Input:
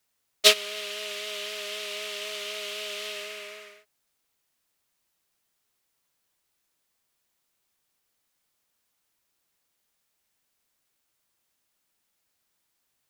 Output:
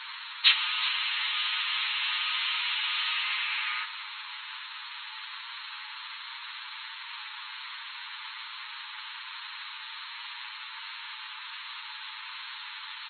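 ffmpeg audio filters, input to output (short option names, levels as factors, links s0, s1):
-filter_complex "[0:a]aeval=exprs='val(0)+0.5*0.0708*sgn(val(0))':c=same,aresample=16000,acrusher=bits=4:mix=0:aa=0.5,aresample=44100,aecho=1:1:372:0.188,afftfilt=real='re*between(b*sr/4096,850,4300)':imag='im*between(b*sr/4096,850,4300)':win_size=4096:overlap=0.75,asplit=2[s0][s1];[s1]adelay=8.4,afreqshift=1.3[s2];[s0][s2]amix=inputs=2:normalize=1"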